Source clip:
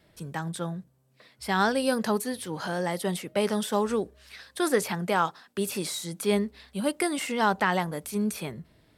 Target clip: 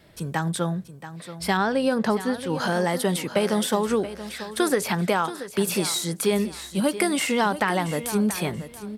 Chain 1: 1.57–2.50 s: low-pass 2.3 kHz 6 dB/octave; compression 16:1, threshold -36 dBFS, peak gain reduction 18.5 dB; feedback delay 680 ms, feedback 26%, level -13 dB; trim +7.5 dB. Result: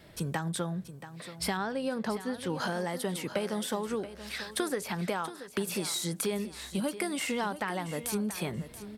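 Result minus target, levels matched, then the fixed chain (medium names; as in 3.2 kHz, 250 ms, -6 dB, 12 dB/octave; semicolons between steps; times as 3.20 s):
compression: peak gain reduction +10.5 dB
1.57–2.50 s: low-pass 2.3 kHz 6 dB/octave; compression 16:1, threshold -25 dBFS, peak gain reduction 8.5 dB; feedback delay 680 ms, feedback 26%, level -13 dB; trim +7.5 dB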